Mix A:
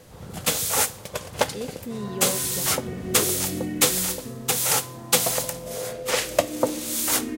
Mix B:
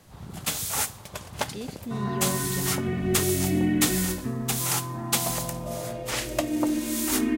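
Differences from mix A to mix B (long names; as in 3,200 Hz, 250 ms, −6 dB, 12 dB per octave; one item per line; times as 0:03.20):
first sound −5.0 dB
second sound +7.0 dB
master: add parametric band 500 Hz −11.5 dB 0.3 octaves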